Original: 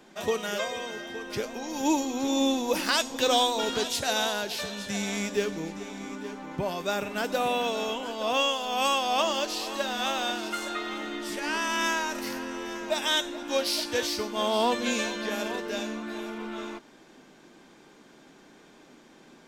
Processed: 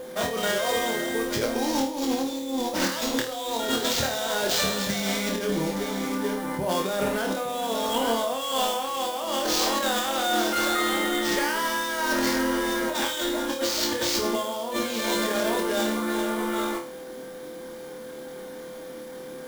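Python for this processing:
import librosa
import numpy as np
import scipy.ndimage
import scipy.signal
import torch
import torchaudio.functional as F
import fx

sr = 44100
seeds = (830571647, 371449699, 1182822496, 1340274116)

y = fx.notch(x, sr, hz=2600.0, q=5.2)
y = fx.over_compress(y, sr, threshold_db=-33.0, ratio=-1.0)
y = y + 10.0 ** (-39.0 / 20.0) * np.sin(2.0 * np.pi * 510.0 * np.arange(len(y)) / sr)
y = fx.sample_hold(y, sr, seeds[0], rate_hz=11000.0, jitter_pct=20)
y = fx.room_flutter(y, sr, wall_m=4.5, rt60_s=0.34)
y = y * 10.0 ** (5.0 / 20.0)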